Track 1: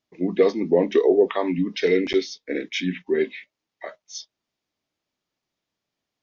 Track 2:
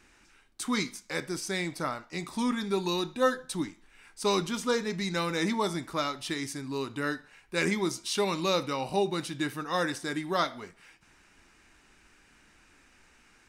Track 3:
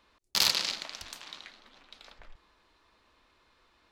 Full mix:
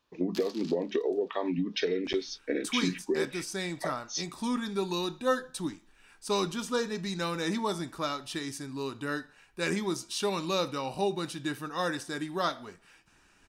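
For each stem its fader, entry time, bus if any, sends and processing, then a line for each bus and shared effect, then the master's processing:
+1.0 dB, 0.00 s, bus A, no send, no processing
−2.0 dB, 2.05 s, no bus, no send, no processing
−11.5 dB, 0.00 s, bus A, no send, no processing
bus A: 0.0 dB, downward compressor 10 to 1, threshold −26 dBFS, peak gain reduction 15.5 dB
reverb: not used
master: notch filter 2,100 Hz, Q 7.8

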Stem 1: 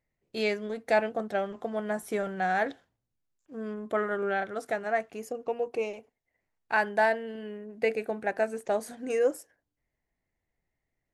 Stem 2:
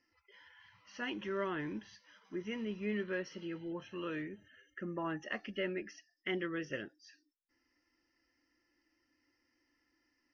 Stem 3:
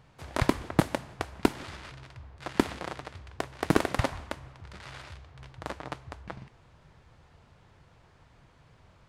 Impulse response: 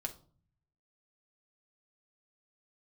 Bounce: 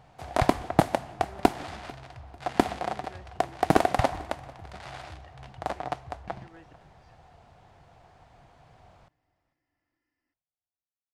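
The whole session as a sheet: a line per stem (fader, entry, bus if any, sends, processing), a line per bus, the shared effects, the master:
muted
−6.5 dB, 0.00 s, no send, no echo send, low-pass filter 3,400 Hz; downward compressor 2 to 1, threshold −46 dBFS, peak gain reduction 8.5 dB; volume swells 310 ms
+0.5 dB, 0.00 s, no send, echo send −23 dB, parametric band 730 Hz +13.5 dB 0.41 octaves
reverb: not used
echo: repeating echo 445 ms, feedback 32%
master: no processing

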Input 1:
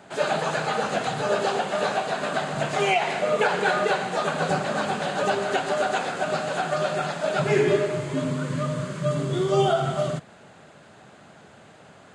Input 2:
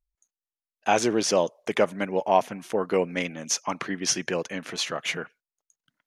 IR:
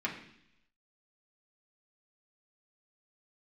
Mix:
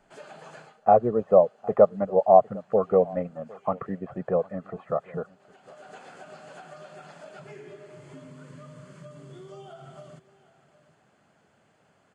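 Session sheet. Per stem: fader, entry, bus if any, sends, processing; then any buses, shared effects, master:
−15.0 dB, 0.00 s, no send, echo send −17.5 dB, notch filter 3,800 Hz, Q 7.8; downward compressor, threshold −27 dBFS, peak gain reduction 11.5 dB; automatic ducking −22 dB, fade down 0.25 s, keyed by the second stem
+3.0 dB, 0.00 s, no send, echo send −23.5 dB, inverse Chebyshev low-pass filter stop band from 5,800 Hz, stop band 80 dB; reverb reduction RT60 0.71 s; comb filter 1.6 ms, depth 74%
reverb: not used
echo: single-tap delay 757 ms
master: no processing

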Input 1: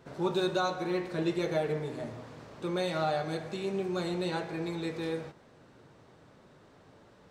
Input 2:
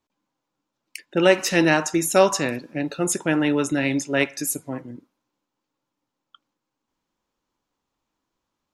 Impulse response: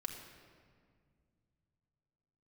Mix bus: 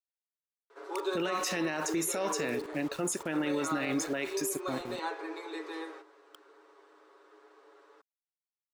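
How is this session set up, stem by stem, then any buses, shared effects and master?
+3.0 dB, 0.70 s, no send, Chebyshev high-pass with heavy ripple 300 Hz, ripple 9 dB; comb filter 7.2 ms, depth 64%
−2.5 dB, 0.00 s, no send, high-pass filter 240 Hz 6 dB per octave; centre clipping without the shift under −40.5 dBFS; brickwall limiter −14.5 dBFS, peak gain reduction 11.5 dB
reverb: not used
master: brickwall limiter −23 dBFS, peak gain reduction 9.5 dB

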